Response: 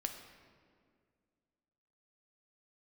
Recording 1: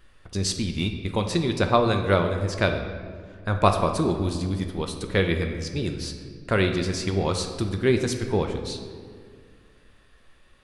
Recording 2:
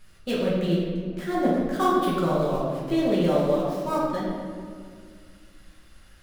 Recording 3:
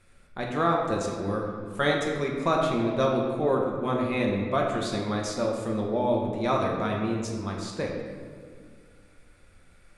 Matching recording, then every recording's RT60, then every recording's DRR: 1; 2.1 s, 2.0 s, 2.0 s; 4.5 dB, -7.5 dB, -1.5 dB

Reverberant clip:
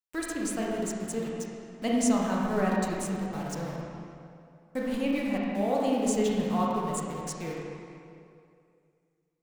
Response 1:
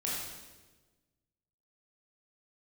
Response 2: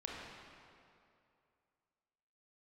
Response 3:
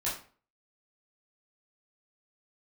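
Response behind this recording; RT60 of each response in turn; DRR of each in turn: 2; 1.3 s, 2.6 s, 0.40 s; -6.0 dB, -3.5 dB, -8.0 dB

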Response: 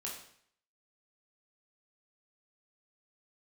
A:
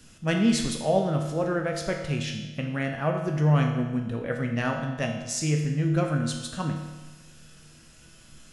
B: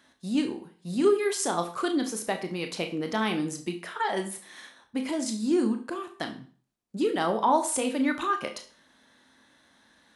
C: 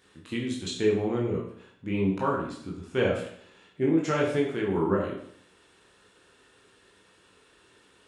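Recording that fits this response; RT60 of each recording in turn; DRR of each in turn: C; 1.2 s, 0.40 s, 0.60 s; 1.5 dB, 5.5 dB, -3.5 dB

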